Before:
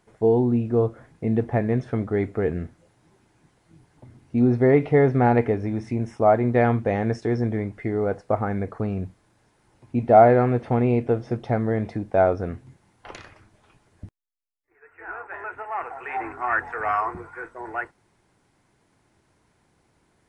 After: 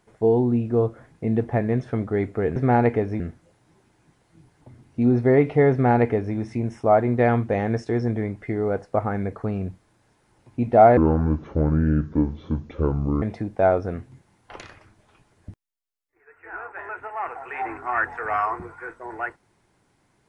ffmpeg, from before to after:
-filter_complex "[0:a]asplit=5[a][b][c][d][e];[a]atrim=end=2.562[f];[b]atrim=start=5.078:end=5.722[g];[c]atrim=start=2.558:end=10.334[h];[d]atrim=start=10.33:end=11.77,asetpts=PTS-STARTPTS,asetrate=28224,aresample=44100[i];[e]atrim=start=11.766[j];[f][g]acrossfade=d=0.004:c1=hsin:c2=hsin[k];[k][h]acrossfade=d=0.004:c1=hsin:c2=hsin[l];[l][i]acrossfade=d=0.004:c1=hsin:c2=hsin[m];[m][j]acrossfade=d=0.004:c1=hsin:c2=hsin"

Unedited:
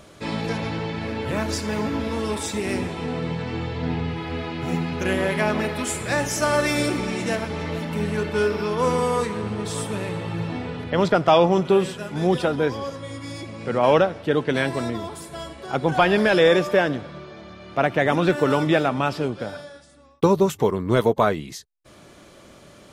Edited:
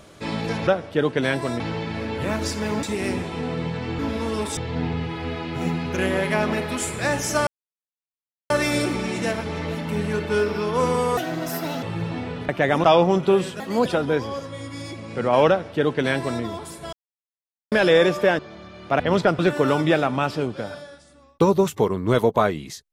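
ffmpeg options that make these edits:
-filter_complex "[0:a]asplit=18[a][b][c][d][e][f][g][h][i][j][k][l][m][n][o][p][q][r];[a]atrim=end=0.672[s];[b]atrim=start=13.988:end=14.922[t];[c]atrim=start=0.668:end=1.902[u];[d]atrim=start=2.478:end=3.642[v];[e]atrim=start=1.898:end=2.482[w];[f]atrim=start=3.638:end=6.54,asetpts=PTS-STARTPTS,afade=t=out:st=2.898:d=0.004:c=hsin,apad=pad_dur=1.03[x];[g]atrim=start=6.54:end=9.214,asetpts=PTS-STARTPTS,afade=t=in:d=0.004:c=hsin[y];[h]atrim=start=9.21:end=10.21,asetpts=PTS-STARTPTS,asetrate=67032,aresample=44100,atrim=end_sample=29013,asetpts=PTS-STARTPTS[z];[i]atrim=start=10.206:end=10.872[aa];[j]atrim=start=17.858:end=18.212[ab];[k]atrim=start=11.258:end=12.024[ac];[l]atrim=start=12.02:end=12.36,asetpts=PTS-STARTPTS,asetrate=57771,aresample=44100[ad];[m]atrim=start=12.356:end=15.43,asetpts=PTS-STARTPTS,afade=t=out:st=3.07:d=0.004:c=hsin[ae];[n]atrim=start=15.43:end=16.22,asetpts=PTS-STARTPTS,volume=0[af];[o]atrim=start=16.22:end=16.892,asetpts=PTS-STARTPTS,afade=t=in:d=0.004:c=hsin[ag];[p]atrim=start=17.248:end=17.862[ah];[q]atrim=start=10.868:end=11.262[ai];[r]atrim=start=18.208[aj];[s][t]acrossfade=d=0.004:c1=hsin:c2=hsin[ak];[ak][u]acrossfade=d=0.004:c1=hsin:c2=hsin[al];[al][v]acrossfade=d=0.004:c1=hsin:c2=hsin[am];[am][w]acrossfade=d=0.004:c1=hsin:c2=hsin[an];[x][y]concat=n=2:v=0:a=1[ao];[an][ao]acrossfade=d=0.004:c1=hsin:c2=hsin[ap];[ap][z]acrossfade=d=0.004:c1=hsin:c2=hsin[aq];[aq][aa]acrossfade=d=0.004:c1=hsin:c2=hsin[ar];[ar][ab]acrossfade=d=0.004:c1=hsin:c2=hsin[as];[as][ac]acrossfade=d=0.004:c1=hsin:c2=hsin[at];[at][ad]acrossfade=d=0.004:c1=hsin:c2=hsin[au];[ae][af][ag]concat=n=3:v=0:a=1[av];[au][av]acrossfade=d=0.004:c1=hsin:c2=hsin[aw];[aw][ah]acrossfade=d=0.004:c1=hsin:c2=hsin[ax];[ax][ai]acrossfade=d=0.004:c1=hsin:c2=hsin[ay];[ay][aj]acrossfade=d=0.004:c1=hsin:c2=hsin"

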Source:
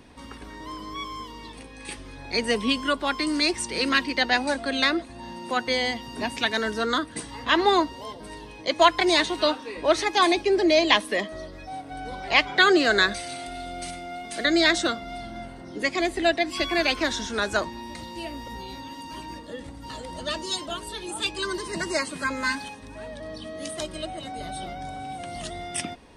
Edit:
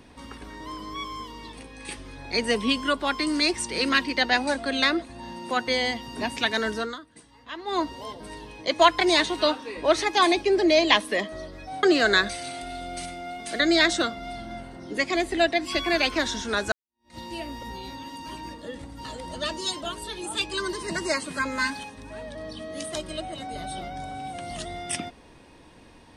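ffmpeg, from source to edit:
-filter_complex "[0:a]asplit=5[a][b][c][d][e];[a]atrim=end=6.97,asetpts=PTS-STARTPTS,afade=t=out:st=6.74:d=0.23:silence=0.149624[f];[b]atrim=start=6.97:end=7.66,asetpts=PTS-STARTPTS,volume=-16.5dB[g];[c]atrim=start=7.66:end=11.832,asetpts=PTS-STARTPTS,afade=t=in:d=0.23:silence=0.149624[h];[d]atrim=start=12.678:end=17.57,asetpts=PTS-STARTPTS,afade=t=out:st=4.888:d=0.004:c=hsin[i];[e]atrim=start=17.57,asetpts=PTS-STARTPTS,afade=t=in:d=0.46:c=exp[j];[f][g][h]concat=n=3:v=0:a=1[k];[i][j]concat=n=2:v=0:a=1[l];[k][l]acrossfade=d=0.004:c1=hsin:c2=hsin"

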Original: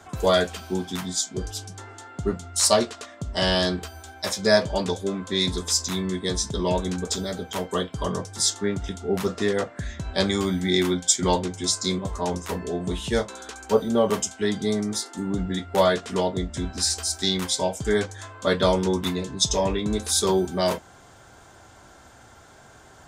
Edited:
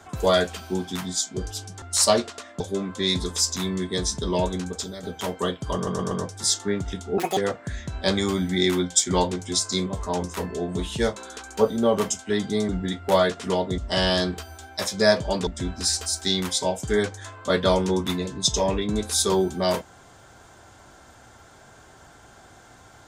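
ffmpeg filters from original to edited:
-filter_complex "[0:a]asplit=12[a][b][c][d][e][f][g][h][i][j][k][l];[a]atrim=end=1.822[m];[b]atrim=start=2.448:end=3.232[n];[c]atrim=start=4.918:end=7.35,asetpts=PTS-STARTPTS,afade=t=out:st=1.852:d=0.58:silence=0.354813[o];[d]atrim=start=7.35:end=8.192,asetpts=PTS-STARTPTS,afade=t=in:d=0.004:c=hsin:silence=0.354813[p];[e]atrim=start=8.068:end=8.192[q];[f]atrim=start=8.068:end=8.192[r];[g]atrim=start=8.068:end=9.144[s];[h]atrim=start=9.14:end=9.49,asetpts=PTS-STARTPTS,asetrate=81585,aresample=44100,atrim=end_sample=8343,asetpts=PTS-STARTPTS[t];[i]atrim=start=9.486:end=14.812[u];[j]atrim=start=15.348:end=16.442[v];[k]atrim=start=3.228:end=4.922[w];[l]atrim=start=16.438[x];[m][n]acrossfade=d=0.004:c1=hsin:c2=hsin[y];[o][p]concat=n=2:v=0:a=1[z];[y][z]acrossfade=d=0.004:c1=hsin:c2=hsin[aa];[aa][q]acrossfade=d=0.004:c1=hsin:c2=hsin[ab];[ab][r]acrossfade=d=0.004:c1=hsin:c2=hsin[ac];[ac][s]acrossfade=d=0.004:c1=hsin:c2=hsin[ad];[ad][t]acrossfade=d=0.004:c1=hsin:c2=hsin[ae];[ae][u]acrossfade=d=0.004:c1=hsin:c2=hsin[af];[af][v]acrossfade=d=0.004:c1=hsin:c2=hsin[ag];[ag][w]acrossfade=d=0.004:c1=hsin:c2=hsin[ah];[ah][x]acrossfade=d=0.004:c1=hsin:c2=hsin"

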